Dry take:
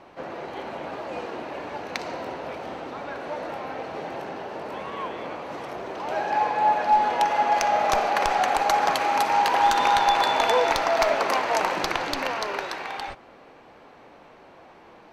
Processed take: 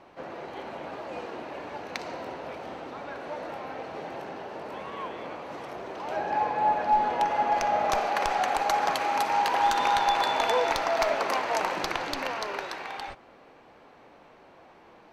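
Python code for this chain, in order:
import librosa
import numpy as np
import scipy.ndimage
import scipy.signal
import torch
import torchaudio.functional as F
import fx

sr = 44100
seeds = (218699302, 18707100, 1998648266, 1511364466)

y = fx.tilt_eq(x, sr, slope=-1.5, at=(6.16, 7.92))
y = F.gain(torch.from_numpy(y), -4.0).numpy()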